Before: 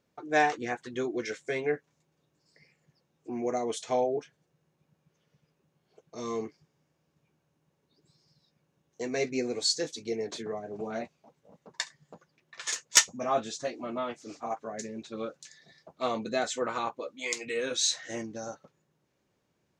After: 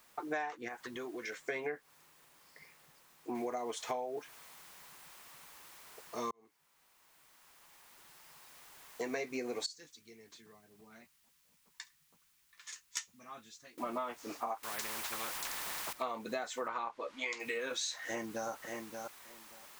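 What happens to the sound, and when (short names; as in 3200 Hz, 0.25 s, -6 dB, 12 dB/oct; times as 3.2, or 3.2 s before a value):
0.68–1.44 compressor, threshold -40 dBFS
3.35 noise floor step -65 dB -56 dB
6.31–9.08 fade in
9.66–13.78 passive tone stack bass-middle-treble 6-0-2
14.63–15.93 spectral compressor 4:1
16.68–17.4 LPF 5000 Hz
18.04–18.49 echo throw 0.58 s, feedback 15%, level -7.5 dB
whole clip: graphic EQ 125/1000/2000 Hz -6/+9/+4 dB; compressor 20:1, threshold -33 dBFS; gain -1 dB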